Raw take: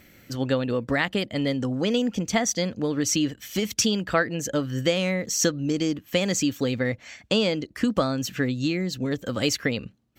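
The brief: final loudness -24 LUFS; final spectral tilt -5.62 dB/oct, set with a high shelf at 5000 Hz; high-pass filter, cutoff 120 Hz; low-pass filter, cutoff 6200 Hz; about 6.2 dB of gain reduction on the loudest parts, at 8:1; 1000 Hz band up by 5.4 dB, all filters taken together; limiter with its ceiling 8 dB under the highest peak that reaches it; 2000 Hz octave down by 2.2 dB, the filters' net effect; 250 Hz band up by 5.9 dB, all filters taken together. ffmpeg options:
-af "highpass=120,lowpass=6.2k,equalizer=f=250:t=o:g=7,equalizer=f=1k:t=o:g=9,equalizer=f=2k:t=o:g=-4.5,highshelf=f=5k:g=-7.5,acompressor=threshold=-19dB:ratio=8,volume=2.5dB,alimiter=limit=-13dB:level=0:latency=1"

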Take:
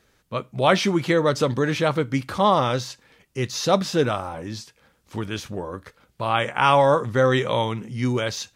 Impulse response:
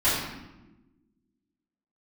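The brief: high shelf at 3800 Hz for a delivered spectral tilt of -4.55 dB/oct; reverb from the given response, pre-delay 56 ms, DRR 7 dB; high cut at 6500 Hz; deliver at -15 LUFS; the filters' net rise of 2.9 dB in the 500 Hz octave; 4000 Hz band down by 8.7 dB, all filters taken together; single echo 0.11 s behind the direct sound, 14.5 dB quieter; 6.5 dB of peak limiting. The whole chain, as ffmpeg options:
-filter_complex "[0:a]lowpass=6.5k,equalizer=f=500:t=o:g=3.5,highshelf=f=3.8k:g=-4.5,equalizer=f=4k:t=o:g=-8.5,alimiter=limit=-11dB:level=0:latency=1,aecho=1:1:110:0.188,asplit=2[a][b];[1:a]atrim=start_sample=2205,adelay=56[c];[b][c]afir=irnorm=-1:irlink=0,volume=-22dB[d];[a][d]amix=inputs=2:normalize=0,volume=7.5dB"

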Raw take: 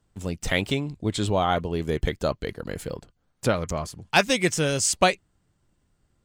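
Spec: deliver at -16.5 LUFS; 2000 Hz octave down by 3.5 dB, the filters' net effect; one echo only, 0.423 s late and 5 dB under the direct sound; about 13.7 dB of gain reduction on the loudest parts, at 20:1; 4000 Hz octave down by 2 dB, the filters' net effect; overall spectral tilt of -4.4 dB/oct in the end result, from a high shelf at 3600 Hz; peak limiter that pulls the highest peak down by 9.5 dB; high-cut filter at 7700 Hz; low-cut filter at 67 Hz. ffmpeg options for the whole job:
-af "highpass=67,lowpass=7.7k,equalizer=f=2k:t=o:g=-5,highshelf=f=3.6k:g=5,equalizer=f=4k:t=o:g=-4,acompressor=threshold=-27dB:ratio=20,alimiter=limit=-23dB:level=0:latency=1,aecho=1:1:423:0.562,volume=18dB"

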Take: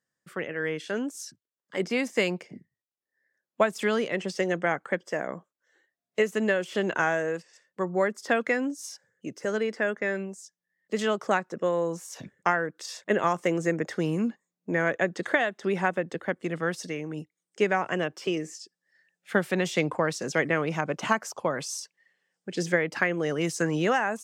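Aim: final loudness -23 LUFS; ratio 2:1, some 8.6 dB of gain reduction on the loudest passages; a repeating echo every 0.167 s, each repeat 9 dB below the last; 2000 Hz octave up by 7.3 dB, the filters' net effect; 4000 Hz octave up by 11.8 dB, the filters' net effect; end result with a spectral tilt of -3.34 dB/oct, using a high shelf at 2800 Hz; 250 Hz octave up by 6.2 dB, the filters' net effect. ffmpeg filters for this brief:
-af "equalizer=f=250:t=o:g=8.5,equalizer=f=2k:t=o:g=4,highshelf=f=2.8k:g=9,equalizer=f=4k:t=o:g=7.5,acompressor=threshold=-29dB:ratio=2,aecho=1:1:167|334|501|668:0.355|0.124|0.0435|0.0152,volume=6dB"

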